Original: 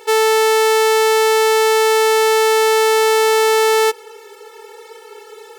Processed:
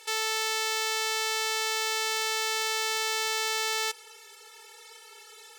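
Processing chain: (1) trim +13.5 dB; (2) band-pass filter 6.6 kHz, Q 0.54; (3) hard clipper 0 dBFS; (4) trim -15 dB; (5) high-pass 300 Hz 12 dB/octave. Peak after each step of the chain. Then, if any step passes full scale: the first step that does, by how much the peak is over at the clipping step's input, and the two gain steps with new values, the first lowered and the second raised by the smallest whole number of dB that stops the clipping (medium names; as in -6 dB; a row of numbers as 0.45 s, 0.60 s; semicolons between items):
+6.0 dBFS, +7.0 dBFS, 0.0 dBFS, -15.0 dBFS, -14.5 dBFS; step 1, 7.0 dB; step 1 +6.5 dB, step 4 -8 dB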